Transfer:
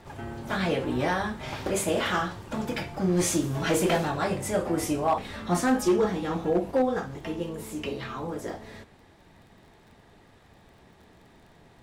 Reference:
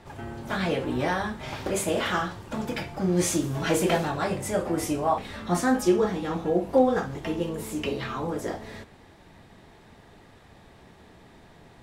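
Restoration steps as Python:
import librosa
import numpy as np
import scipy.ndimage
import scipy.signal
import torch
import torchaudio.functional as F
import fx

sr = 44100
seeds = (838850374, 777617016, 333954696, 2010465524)

y = fx.fix_declip(x, sr, threshold_db=-16.5)
y = fx.fix_declick_ar(y, sr, threshold=6.5)
y = fx.fix_level(y, sr, at_s=6.71, step_db=3.5)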